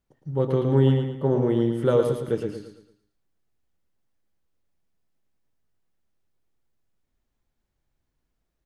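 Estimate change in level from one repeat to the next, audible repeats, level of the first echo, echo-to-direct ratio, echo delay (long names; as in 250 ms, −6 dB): −8.0 dB, 4, −6.0 dB, −5.5 dB, 112 ms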